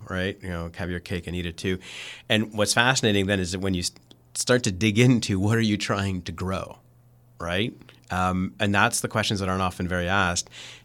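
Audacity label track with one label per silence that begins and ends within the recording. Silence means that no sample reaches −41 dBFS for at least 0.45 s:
6.760000	7.400000	silence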